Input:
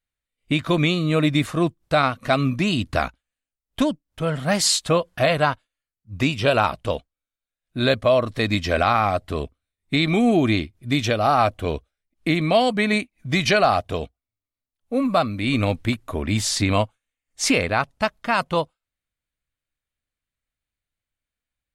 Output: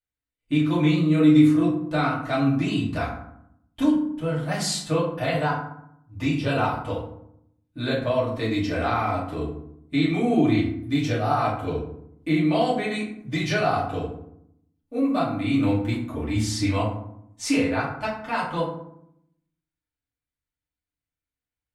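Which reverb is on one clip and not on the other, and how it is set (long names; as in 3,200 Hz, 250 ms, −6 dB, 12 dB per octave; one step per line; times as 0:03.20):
feedback delay network reverb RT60 0.73 s, low-frequency decay 1.45×, high-frequency decay 0.5×, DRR −7.5 dB
level −13.5 dB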